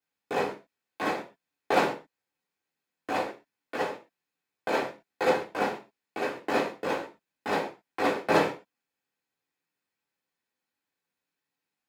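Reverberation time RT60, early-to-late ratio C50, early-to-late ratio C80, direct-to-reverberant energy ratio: not exponential, 11.0 dB, 16.5 dB, -6.0 dB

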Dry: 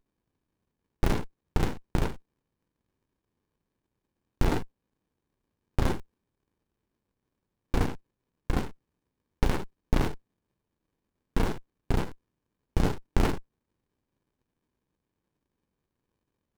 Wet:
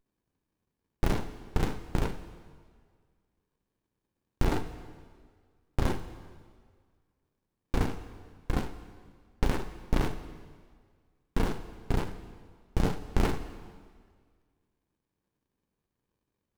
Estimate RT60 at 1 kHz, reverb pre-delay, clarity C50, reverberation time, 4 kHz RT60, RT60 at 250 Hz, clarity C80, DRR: 1.8 s, 7 ms, 11.5 dB, 1.8 s, 1.6 s, 1.8 s, 13.0 dB, 10.0 dB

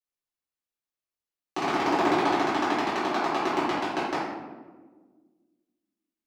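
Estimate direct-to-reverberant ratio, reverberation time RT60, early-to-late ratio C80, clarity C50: -10.5 dB, 1.4 s, 2.5 dB, -1.0 dB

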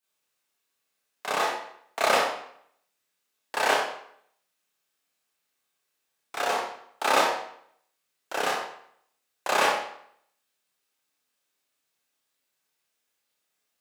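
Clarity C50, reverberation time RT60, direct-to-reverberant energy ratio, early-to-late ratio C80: 1.0 dB, 0.65 s, -10.5 dB, 4.5 dB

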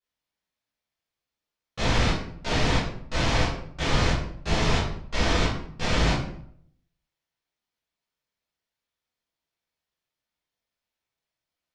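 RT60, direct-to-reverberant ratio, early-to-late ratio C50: 0.65 s, -11.0 dB, 3.0 dB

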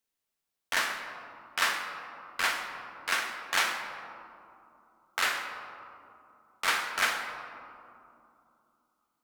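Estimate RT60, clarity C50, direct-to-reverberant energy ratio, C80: 2.7 s, 5.5 dB, 3.0 dB, 6.5 dB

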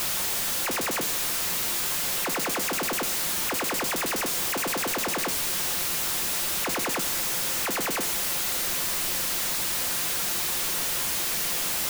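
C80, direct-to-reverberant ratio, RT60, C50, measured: 18.5 dB, 8.0 dB, 0.80 s, 15.5 dB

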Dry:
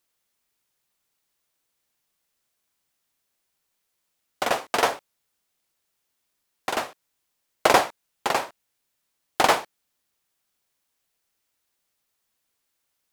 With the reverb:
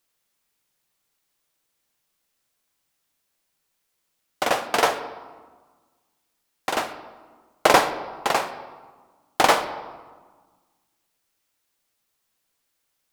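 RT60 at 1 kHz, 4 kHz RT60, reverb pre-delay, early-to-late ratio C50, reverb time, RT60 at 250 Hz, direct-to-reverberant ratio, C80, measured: 1.5 s, 0.90 s, 4 ms, 11.5 dB, 1.4 s, 1.9 s, 9.0 dB, 13.0 dB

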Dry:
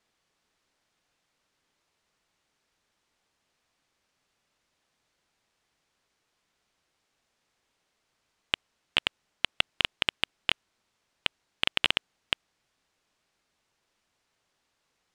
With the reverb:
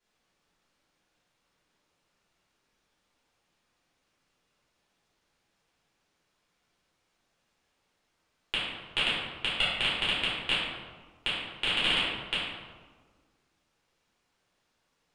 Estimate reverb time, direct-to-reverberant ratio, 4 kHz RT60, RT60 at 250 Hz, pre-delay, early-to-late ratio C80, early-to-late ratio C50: 1.5 s, -10.0 dB, 0.85 s, 1.9 s, 3 ms, 2.0 dB, -1.0 dB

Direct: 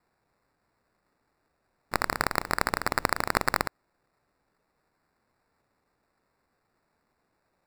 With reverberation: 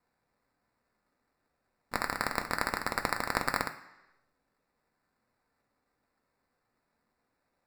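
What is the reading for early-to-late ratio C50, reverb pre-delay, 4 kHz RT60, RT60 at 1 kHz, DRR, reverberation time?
11.5 dB, 3 ms, 1.0 s, 1.0 s, 4.5 dB, 0.95 s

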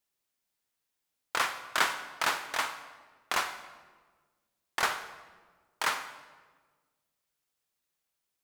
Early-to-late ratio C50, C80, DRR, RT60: 10.5 dB, 12.0 dB, 9.5 dB, 1.4 s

